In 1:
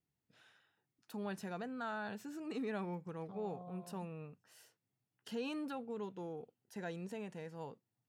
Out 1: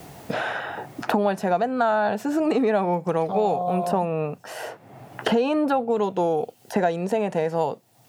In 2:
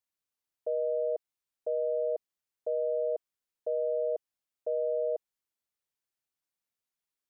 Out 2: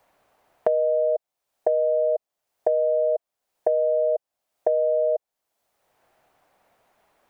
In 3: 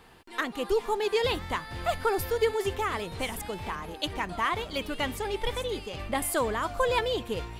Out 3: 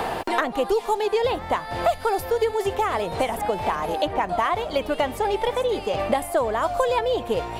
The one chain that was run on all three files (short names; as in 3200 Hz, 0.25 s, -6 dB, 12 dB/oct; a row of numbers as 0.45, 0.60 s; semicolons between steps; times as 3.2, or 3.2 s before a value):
bell 680 Hz +13 dB 1.1 oct; three-band squash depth 100%; match loudness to -24 LUFS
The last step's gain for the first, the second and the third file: +14.5, -1.5, -1.0 dB